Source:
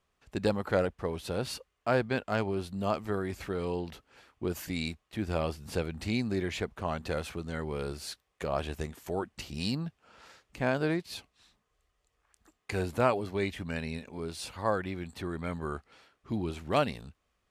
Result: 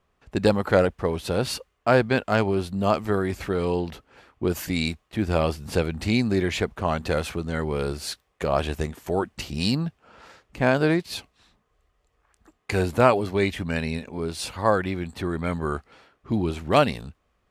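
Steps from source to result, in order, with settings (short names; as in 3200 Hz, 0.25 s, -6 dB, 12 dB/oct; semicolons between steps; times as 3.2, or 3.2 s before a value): mismatched tape noise reduction decoder only; gain +8.5 dB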